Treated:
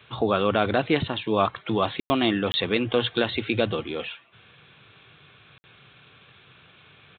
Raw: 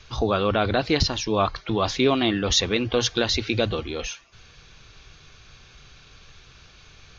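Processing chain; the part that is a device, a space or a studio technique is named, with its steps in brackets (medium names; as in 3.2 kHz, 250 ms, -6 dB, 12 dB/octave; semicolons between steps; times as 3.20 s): call with lost packets (high-pass 110 Hz 24 dB/octave; resampled via 8 kHz; lost packets bursts)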